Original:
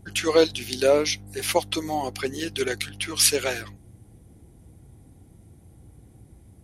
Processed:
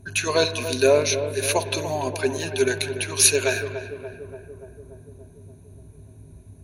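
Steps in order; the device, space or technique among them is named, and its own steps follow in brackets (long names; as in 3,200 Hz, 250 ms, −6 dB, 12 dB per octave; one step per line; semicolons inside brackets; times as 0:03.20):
EQ curve with evenly spaced ripples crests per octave 1.5, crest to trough 13 dB
dub delay into a spring reverb (feedback echo with a low-pass in the loop 289 ms, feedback 71%, low-pass 1,400 Hz, level −9.5 dB; spring reverb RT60 1.6 s, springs 47/53 ms, chirp 70 ms, DRR 13.5 dB)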